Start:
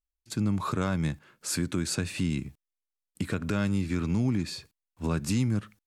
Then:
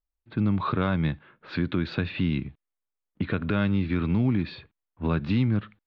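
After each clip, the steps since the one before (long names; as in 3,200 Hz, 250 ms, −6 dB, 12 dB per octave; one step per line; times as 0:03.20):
low-pass that shuts in the quiet parts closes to 1,300 Hz, open at −23 dBFS
elliptic low-pass filter 3,800 Hz, stop band 60 dB
level +4 dB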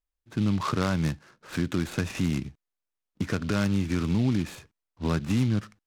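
short delay modulated by noise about 3,000 Hz, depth 0.047 ms
level −1 dB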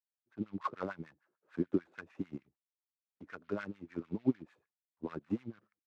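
auto-filter band-pass sine 6.7 Hz 320–1,900 Hz
expander for the loud parts 2.5 to 1, over −43 dBFS
level +5.5 dB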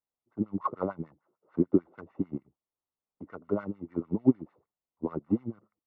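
Savitzky-Golay smoothing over 65 samples
level +8 dB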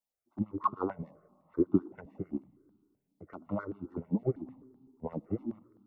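on a send at −23 dB: convolution reverb RT60 2.0 s, pre-delay 30 ms
on the sum: step-sequenced phaser 7.8 Hz 370–1,900 Hz
level +2 dB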